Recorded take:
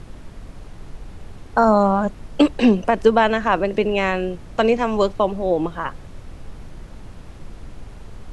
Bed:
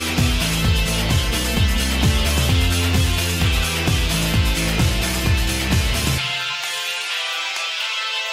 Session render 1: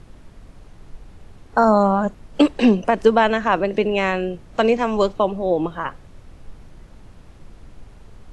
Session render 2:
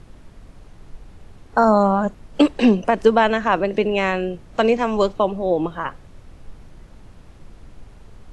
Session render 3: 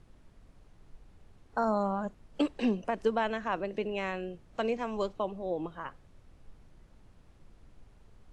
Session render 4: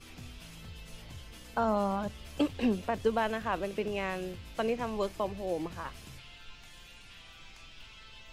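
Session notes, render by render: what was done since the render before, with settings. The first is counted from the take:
noise reduction from a noise print 6 dB
no processing that can be heard
level −14 dB
mix in bed −29.5 dB

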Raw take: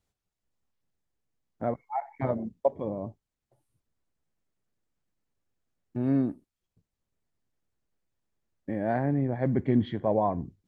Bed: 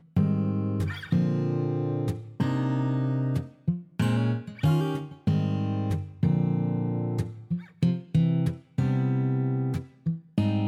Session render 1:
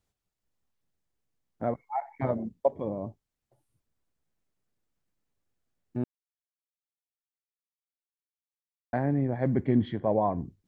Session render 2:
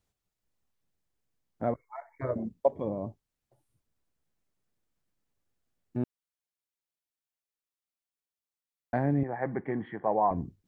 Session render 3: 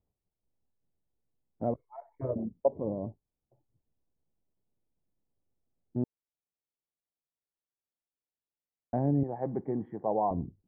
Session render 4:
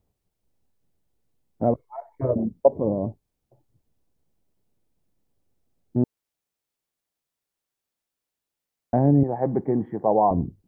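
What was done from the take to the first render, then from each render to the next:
0:06.04–0:08.93: silence; 0:09.66–0:10.36: high-frequency loss of the air 85 metres
0:01.74–0:02.36: phaser with its sweep stopped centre 800 Hz, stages 6; 0:09.23–0:10.31: loudspeaker in its box 240–2,200 Hz, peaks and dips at 250 Hz −9 dB, 370 Hz −3 dB, 580 Hz −5 dB, 820 Hz +7 dB, 1,200 Hz +4 dB, 1,800 Hz +5 dB
drawn EQ curve 450 Hz 0 dB, 880 Hz −4 dB, 1,500 Hz −18 dB, 3,200 Hz −25 dB
level +9.5 dB

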